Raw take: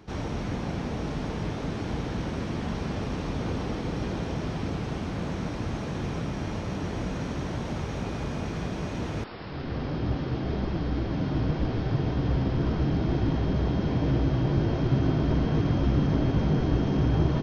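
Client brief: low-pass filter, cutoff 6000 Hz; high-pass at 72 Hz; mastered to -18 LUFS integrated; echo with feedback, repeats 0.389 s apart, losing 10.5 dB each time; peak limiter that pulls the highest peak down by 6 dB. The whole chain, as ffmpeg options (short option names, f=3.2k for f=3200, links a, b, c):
-af "highpass=72,lowpass=6k,alimiter=limit=-18dB:level=0:latency=1,aecho=1:1:389|778|1167:0.299|0.0896|0.0269,volume=11.5dB"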